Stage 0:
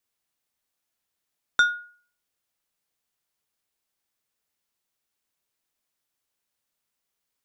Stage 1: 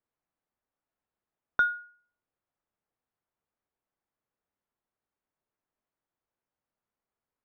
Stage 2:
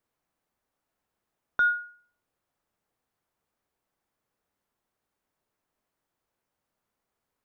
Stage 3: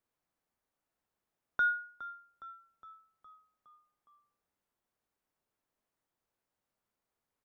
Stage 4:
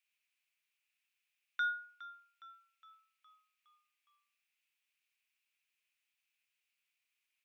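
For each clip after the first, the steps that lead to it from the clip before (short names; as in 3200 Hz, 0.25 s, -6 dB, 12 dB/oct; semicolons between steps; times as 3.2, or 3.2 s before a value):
LPF 1300 Hz 12 dB/oct
limiter -25 dBFS, peak gain reduction 9.5 dB; gain +7.5 dB
frequency-shifting echo 0.413 s, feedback 59%, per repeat -44 Hz, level -15.5 dB; gain -5.5 dB
resonant high-pass 2500 Hz, resonance Q 5.7; gain +1 dB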